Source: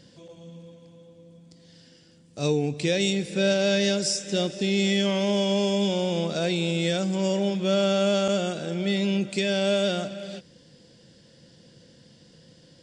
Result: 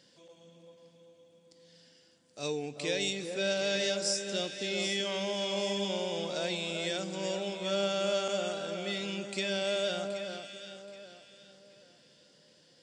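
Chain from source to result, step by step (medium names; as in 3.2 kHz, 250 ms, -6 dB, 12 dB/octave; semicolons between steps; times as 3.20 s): high-pass 620 Hz 6 dB/octave; on a send: echo whose repeats swap between lows and highs 388 ms, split 1.4 kHz, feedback 53%, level -5 dB; on the sum: trim -5 dB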